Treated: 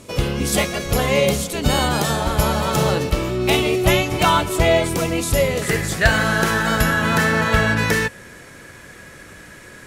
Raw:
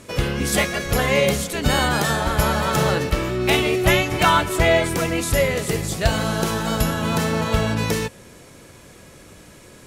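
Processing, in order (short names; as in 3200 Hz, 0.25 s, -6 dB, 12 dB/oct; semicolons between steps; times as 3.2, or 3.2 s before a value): bell 1700 Hz -6 dB 0.65 oct, from 5.62 s +12 dB; gain +1.5 dB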